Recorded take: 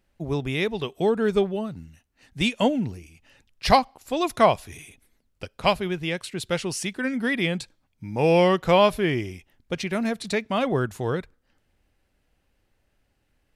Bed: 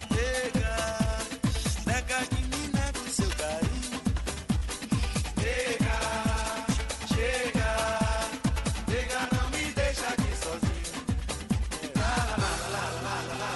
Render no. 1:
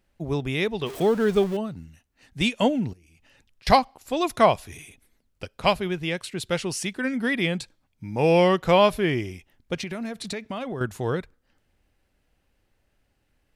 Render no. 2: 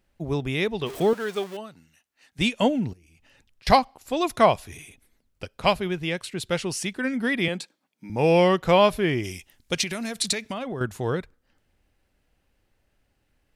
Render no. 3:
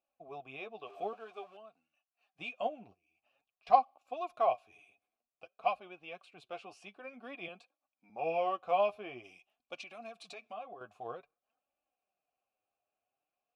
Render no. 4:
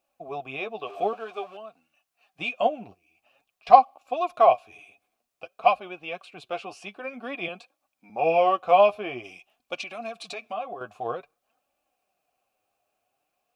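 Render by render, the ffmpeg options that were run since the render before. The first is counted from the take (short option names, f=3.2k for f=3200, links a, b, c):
-filter_complex "[0:a]asettb=1/sr,asplit=3[a][b][c];[a]atrim=end=0.864[d];[b]atrim=start=0.86:end=1.57,asetpts=PTS-STARTPTS,afade=t=in:d=0.004:c=qsin,afade=t=out:st=0.706:d=0.004:c=qsin,aeval=exprs='val(0)+0.5*0.0224*sgn(val(0))':c=same[e];[c]atrim=start=1.566[f];[d][e]acrossfade=d=0.004:c1=hsin:c2=qsin[g];[g][f]acrossfade=d=0.004:c1=qsin:c2=hsin,asettb=1/sr,asplit=3[h][i][j];[h]atrim=end=2.934[k];[i]atrim=start=2.93:end=3.67,asetpts=PTS-STARTPTS,afade=t=in:d=0.004:c=qsin,afade=t=out:st=0.736:d=0.004:c=qsin,acompressor=threshold=-53dB:ratio=8:attack=3.2:release=140:knee=1:detection=peak[l];[j]atrim=start=3.666[m];[k][l]acrossfade=d=0.004:c1=hsin:c2=qsin[n];[n][m]acrossfade=d=0.004:c1=qsin:c2=hsin,asettb=1/sr,asplit=3[o][p][q];[o]atrim=end=9.794[r];[p]atrim=start=9.79:end=10.81,asetpts=PTS-STARTPTS,afade=t=in:d=0.004:c=qsin,afade=t=out:st=1.016:d=0.004:c=qsin,acompressor=threshold=-27dB:ratio=12:attack=3.2:release=140:knee=1:detection=peak[s];[q]atrim=start=10.806[t];[r][s]acrossfade=d=0.004:c1=hsin:c2=qsin[u];[u][t]acrossfade=d=0.004:c1=qsin:c2=hsin"
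-filter_complex "[0:a]asettb=1/sr,asplit=3[a][b][c];[a]atrim=end=1.134[d];[b]atrim=start=1.13:end=2.39,asetpts=PTS-STARTPTS,afade=t=in:d=0.004:c=qsin,afade=t=out:st=1.256:d=0.004:c=qsin,highpass=f=940:p=1[e];[c]atrim=start=2.386[f];[d][e]acrossfade=d=0.004:c1=hsin:c2=qsin[g];[g][f]acrossfade=d=0.004:c1=qsin:c2=hsin,asettb=1/sr,asplit=3[h][i][j];[h]atrim=end=7.484[k];[i]atrim=start=7.48:end=8.1,asetpts=PTS-STARTPTS,afade=t=in:d=0.004:c=qsin,afade=t=out:st=0.616:d=0.004:c=qsin,highpass=f=200:w=0.5412,highpass=f=200:w=1.3066[l];[j]atrim=start=8.096[m];[k][l]acrossfade=d=0.004:c1=hsin:c2=qsin[n];[n][m]acrossfade=d=0.004:c1=qsin:c2=hsin,asplit=3[o][p][q];[o]afade=t=out:st=9.23:d=0.02[r];[p]equalizer=f=8.8k:t=o:w=2.9:g=14,afade=t=in:st=9.23:d=0.02,afade=t=out:st=10.52:d=0.02[s];[q]afade=t=in:st=10.52:d=0.02[t];[r][s][t]amix=inputs=3:normalize=0"
-filter_complex "[0:a]flanger=delay=3.4:depth=6.6:regen=27:speed=0.51:shape=sinusoidal,asplit=3[a][b][c];[a]bandpass=f=730:t=q:w=8,volume=0dB[d];[b]bandpass=f=1.09k:t=q:w=8,volume=-6dB[e];[c]bandpass=f=2.44k:t=q:w=8,volume=-9dB[f];[d][e][f]amix=inputs=3:normalize=0"
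-af "volume=12dB,alimiter=limit=-1dB:level=0:latency=1"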